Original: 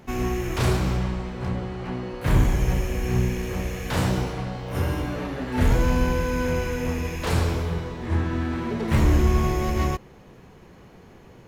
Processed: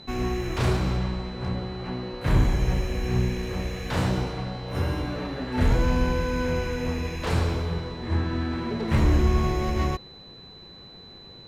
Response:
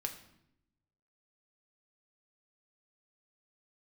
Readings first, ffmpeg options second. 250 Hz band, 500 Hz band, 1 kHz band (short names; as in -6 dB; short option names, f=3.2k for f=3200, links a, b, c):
-1.5 dB, -1.5 dB, -1.5 dB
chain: -af "highshelf=f=8.3k:g=-10,aeval=exprs='val(0)+0.00631*sin(2*PI*4000*n/s)':c=same,volume=-1.5dB"